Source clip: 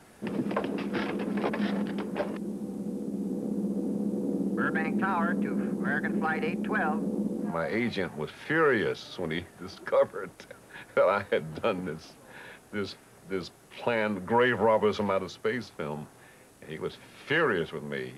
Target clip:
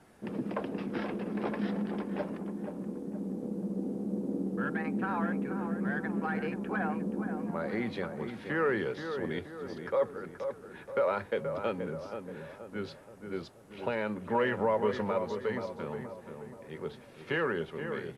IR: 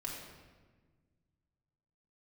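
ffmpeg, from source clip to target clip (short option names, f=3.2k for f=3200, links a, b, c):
-filter_complex "[0:a]highshelf=f=2.4k:g=-6,asplit=2[a][b];[b]adelay=477,lowpass=f=1.6k:p=1,volume=-7dB,asplit=2[c][d];[d]adelay=477,lowpass=f=1.6k:p=1,volume=0.5,asplit=2[e][f];[f]adelay=477,lowpass=f=1.6k:p=1,volume=0.5,asplit=2[g][h];[h]adelay=477,lowpass=f=1.6k:p=1,volume=0.5,asplit=2[i][j];[j]adelay=477,lowpass=f=1.6k:p=1,volume=0.5,asplit=2[k][l];[l]adelay=477,lowpass=f=1.6k:p=1,volume=0.5[m];[c][e][g][i][k][m]amix=inputs=6:normalize=0[n];[a][n]amix=inputs=2:normalize=0,volume=-4dB" -ar 32000 -c:a libmp3lame -b:a 64k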